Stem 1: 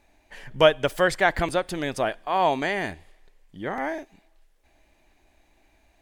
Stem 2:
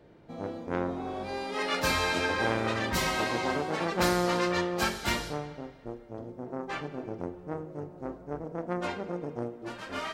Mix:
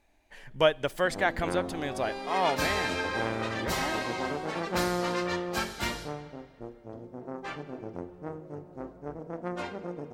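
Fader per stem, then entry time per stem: -6.0, -2.5 dB; 0.00, 0.75 s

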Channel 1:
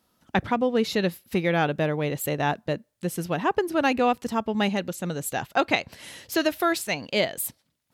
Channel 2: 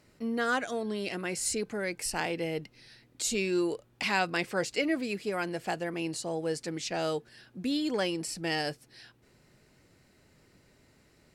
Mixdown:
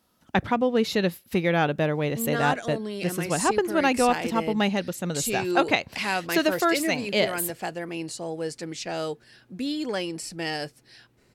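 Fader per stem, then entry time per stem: +0.5, +1.0 dB; 0.00, 1.95 s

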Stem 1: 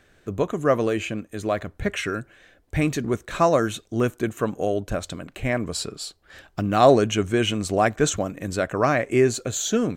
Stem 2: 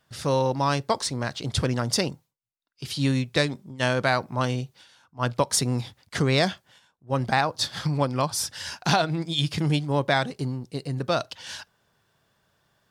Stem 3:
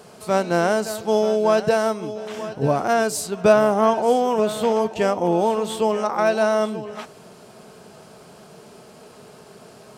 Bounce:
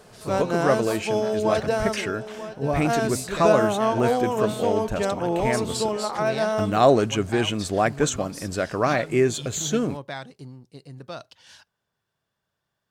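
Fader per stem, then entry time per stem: -1.5, -12.0, -5.0 dB; 0.00, 0.00, 0.00 s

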